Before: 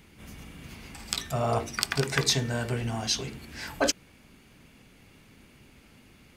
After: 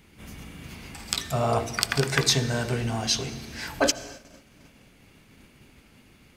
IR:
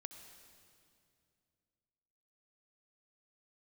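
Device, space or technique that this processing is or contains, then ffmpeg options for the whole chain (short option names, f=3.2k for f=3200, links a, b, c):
keyed gated reverb: -filter_complex "[0:a]asplit=3[a][b][c];[1:a]atrim=start_sample=2205[d];[b][d]afir=irnorm=-1:irlink=0[e];[c]apad=whole_len=280535[f];[e][f]sidechaingate=range=-33dB:threshold=-53dB:ratio=16:detection=peak,volume=2dB[g];[a][g]amix=inputs=2:normalize=0,volume=-1.5dB"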